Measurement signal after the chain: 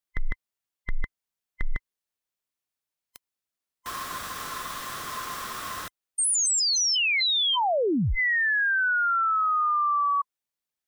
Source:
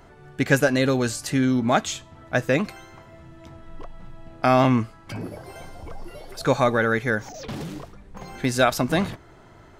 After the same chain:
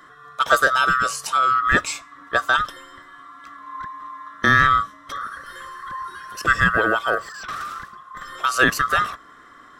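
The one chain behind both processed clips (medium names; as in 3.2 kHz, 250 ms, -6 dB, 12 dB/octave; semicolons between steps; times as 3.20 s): split-band scrambler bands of 1 kHz; trim +2 dB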